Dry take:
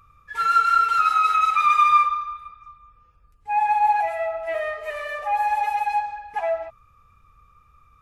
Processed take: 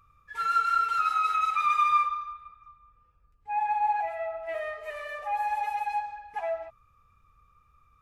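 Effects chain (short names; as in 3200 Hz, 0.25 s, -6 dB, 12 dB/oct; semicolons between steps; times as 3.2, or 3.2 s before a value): 2.32–4.49 high shelf 5500 Hz -11.5 dB; gain -7 dB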